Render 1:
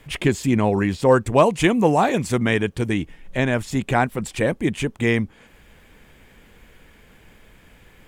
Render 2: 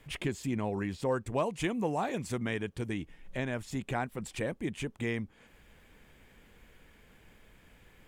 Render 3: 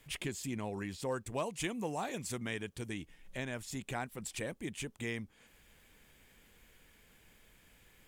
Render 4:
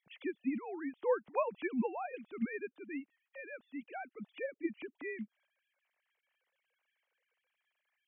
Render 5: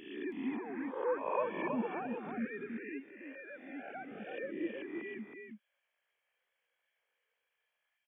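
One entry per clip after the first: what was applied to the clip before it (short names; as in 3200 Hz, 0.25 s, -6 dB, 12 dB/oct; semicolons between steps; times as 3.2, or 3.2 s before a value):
compressor 1.5:1, threshold -30 dBFS, peak gain reduction 7.5 dB; gain -8.5 dB
high shelf 3200 Hz +11.5 dB; gain -6.5 dB
sine-wave speech; upward expander 1.5:1, over -58 dBFS; gain +3.5 dB
spectral swells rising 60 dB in 0.89 s; on a send: echo 0.322 s -5.5 dB; on the sum: gain -4 dB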